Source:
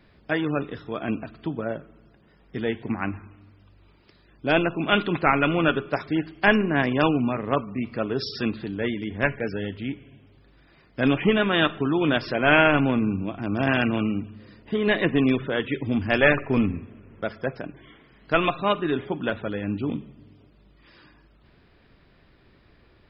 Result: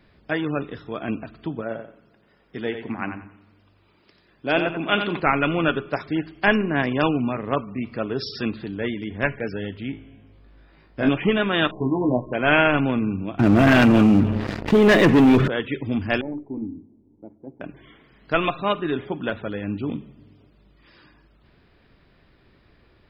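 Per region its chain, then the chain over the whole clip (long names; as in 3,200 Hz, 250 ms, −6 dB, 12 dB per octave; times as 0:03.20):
0:01.62–0:05.20: low-shelf EQ 130 Hz −10.5 dB + repeating echo 89 ms, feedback 24%, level −8 dB
0:09.91–0:11.09: high-shelf EQ 2,700 Hz −7 dB + flutter between parallel walls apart 3.2 metres, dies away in 0.3 s
0:11.71–0:12.33: linear-phase brick-wall low-pass 1,100 Hz + double-tracking delay 16 ms −2.5 dB
0:13.39–0:15.48: high-shelf EQ 2,500 Hz −9.5 dB + leveller curve on the samples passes 3 + envelope flattener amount 50%
0:16.21–0:17.61: formant resonators in series u + mains-hum notches 60/120/180/240/300/360/420 Hz
whole clip: no processing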